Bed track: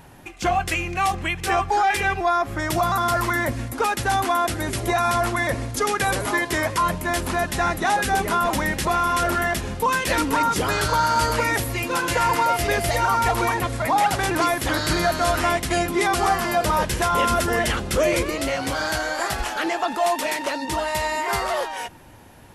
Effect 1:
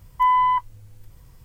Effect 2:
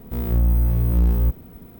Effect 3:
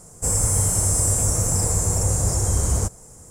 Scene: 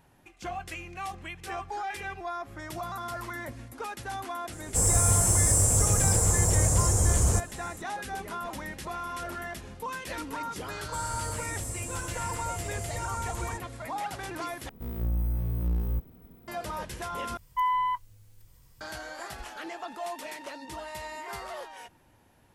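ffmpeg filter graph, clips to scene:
ffmpeg -i bed.wav -i cue0.wav -i cue1.wav -i cue2.wav -filter_complex "[3:a]asplit=2[link_01][link_02];[0:a]volume=-15dB[link_03];[link_01]acontrast=52[link_04];[link_02]highshelf=frequency=11000:gain=-5.5[link_05];[1:a]highshelf=frequency=2300:gain=8.5[link_06];[link_03]asplit=3[link_07][link_08][link_09];[link_07]atrim=end=14.694[link_10];[2:a]atrim=end=1.79,asetpts=PTS-STARTPTS,volume=-10.5dB[link_11];[link_08]atrim=start=16.476:end=17.374[link_12];[link_06]atrim=end=1.44,asetpts=PTS-STARTPTS,volume=-10dB[link_13];[link_09]atrim=start=18.806[link_14];[link_04]atrim=end=3.3,asetpts=PTS-STARTPTS,volume=-8dB,afade=type=in:duration=0.004:curve=hsin,afade=type=out:start_time=3.296:duration=0.004:curve=hsin,adelay=4520[link_15];[link_05]atrim=end=3.3,asetpts=PTS-STARTPTS,volume=-16dB,afade=type=in:duration=0.004:curve=hsin,afade=type=out:start_time=3.296:duration=0.004:curve=hsin,adelay=10700[link_16];[link_10][link_11]acrossfade=duration=0.004:curve1=hsin:curve2=hsin[link_17];[link_17][link_12]acrossfade=duration=0.004:curve1=hsin:curve2=hsin[link_18];[link_18][link_13]acrossfade=duration=0.004:curve1=hsin:curve2=hsin[link_19];[link_19][link_14]acrossfade=duration=0.004:curve1=hsin:curve2=hsin[link_20];[link_20][link_15][link_16]amix=inputs=3:normalize=0" out.wav

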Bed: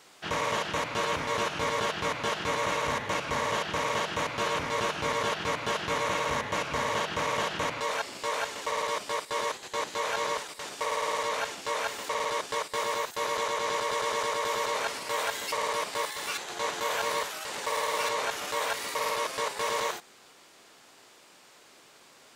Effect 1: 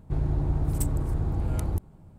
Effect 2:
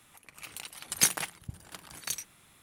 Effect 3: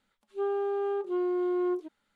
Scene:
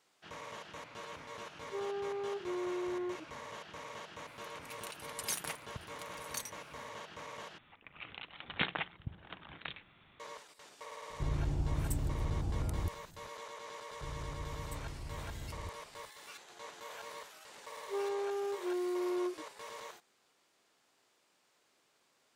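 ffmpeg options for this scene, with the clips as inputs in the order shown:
ffmpeg -i bed.wav -i cue0.wav -i cue1.wav -i cue2.wav -filter_complex "[3:a]asplit=2[link_01][link_02];[2:a]asplit=2[link_03][link_04];[1:a]asplit=2[link_05][link_06];[0:a]volume=-17.5dB[link_07];[link_01]alimiter=level_in=3.5dB:limit=-24dB:level=0:latency=1:release=71,volume=-3.5dB[link_08];[link_03]alimiter=limit=-17.5dB:level=0:latency=1:release=20[link_09];[link_04]aresample=8000,aresample=44100[link_10];[link_07]asplit=2[link_11][link_12];[link_11]atrim=end=7.584[link_13];[link_10]atrim=end=2.62,asetpts=PTS-STARTPTS,volume=-1dB[link_14];[link_12]atrim=start=10.196[link_15];[link_08]atrim=end=2.15,asetpts=PTS-STARTPTS,volume=-6.5dB,afade=type=in:duration=0.004:curve=hsin,afade=type=out:start_time=2.146:duration=0.004:curve=hsin,adelay=1360[link_16];[link_09]atrim=end=2.62,asetpts=PTS-STARTPTS,volume=-6.5dB,afade=type=in:duration=0.004:curve=hsin,afade=type=out:start_time=2.616:duration=0.004:curve=hsin,adelay=4270[link_17];[link_05]atrim=end=2.18,asetpts=PTS-STARTPTS,volume=-8dB,afade=type=in:duration=0.004:curve=hsin,afade=type=out:start_time=2.176:duration=0.004:curve=hsin,adelay=11100[link_18];[link_06]atrim=end=2.18,asetpts=PTS-STARTPTS,volume=-17.5dB,afade=type=in:duration=0.004:curve=hsin,afade=type=out:start_time=2.176:duration=0.004:curve=hsin,adelay=13910[link_19];[link_02]atrim=end=2.15,asetpts=PTS-STARTPTS,volume=-6.5dB,afade=type=in:duration=0.004:curve=hsin,afade=type=out:start_time=2.146:duration=0.004:curve=hsin,adelay=17540[link_20];[link_13][link_14]acrossfade=duration=0.004:curve1=hsin:curve2=hsin[link_21];[link_21][link_15]acrossfade=duration=0.004:curve1=hsin:curve2=hsin[link_22];[link_22][link_16][link_17][link_18][link_19][link_20]amix=inputs=6:normalize=0" out.wav

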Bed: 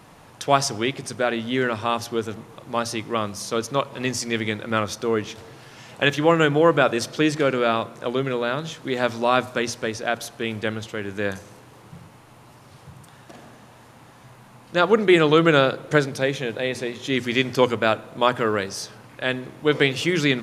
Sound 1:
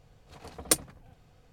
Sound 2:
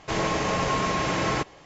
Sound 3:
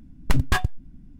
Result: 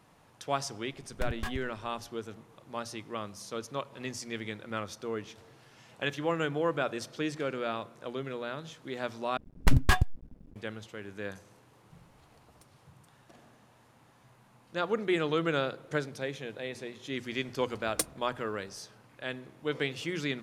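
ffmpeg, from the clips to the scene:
ffmpeg -i bed.wav -i cue0.wav -i cue1.wav -i cue2.wav -filter_complex "[3:a]asplit=2[link_01][link_02];[1:a]asplit=2[link_03][link_04];[0:a]volume=-13dB[link_05];[link_02]aeval=exprs='sgn(val(0))*max(abs(val(0))-0.00447,0)':channel_layout=same[link_06];[link_03]acompressor=threshold=-49dB:ratio=5:attack=0.17:release=850:knee=1:detection=peak[link_07];[link_05]asplit=2[link_08][link_09];[link_08]atrim=end=9.374[link_10];[link_06]atrim=end=1.19,asetpts=PTS-STARTPTS,volume=-1.5dB[link_11];[link_09]atrim=start=10.556[link_12];[link_01]atrim=end=1.19,asetpts=PTS-STARTPTS,volume=-15dB,afade=type=in:duration=0.004:curve=hsin,afade=type=out:start_time=1.186:duration=0.004:curve=hsin,adelay=910[link_13];[link_07]atrim=end=1.52,asetpts=PTS-STARTPTS,volume=-6.5dB,afade=type=in:duration=0.004:curve=hsin,afade=type=out:start_time=1.516:duration=0.004:curve=hsin,adelay=11900[link_14];[link_04]atrim=end=1.52,asetpts=PTS-STARTPTS,volume=-7dB,afade=type=in:duration=0.004:curve=hsin,afade=type=out:start_time=1.516:duration=0.004:curve=hsin,adelay=17280[link_15];[link_10][link_11]acrossfade=duration=0.004:curve1=hsin:curve2=hsin[link_16];[link_16][link_12]acrossfade=duration=0.004:curve1=hsin:curve2=hsin[link_17];[link_17][link_13][link_14][link_15]amix=inputs=4:normalize=0" out.wav

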